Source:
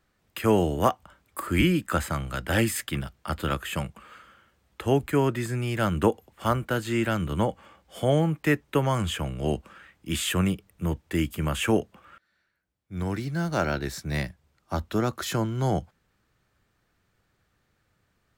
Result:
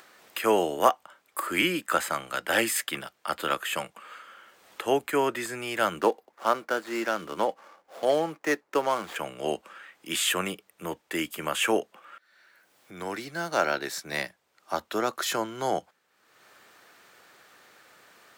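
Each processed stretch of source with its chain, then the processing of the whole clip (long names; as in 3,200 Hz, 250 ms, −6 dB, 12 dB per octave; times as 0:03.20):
0:05.99–0:09.16: running median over 15 samples + parametric band 110 Hz −11.5 dB 0.81 octaves
whole clip: high-pass filter 460 Hz 12 dB per octave; upward compression, threshold −44 dBFS; level +3 dB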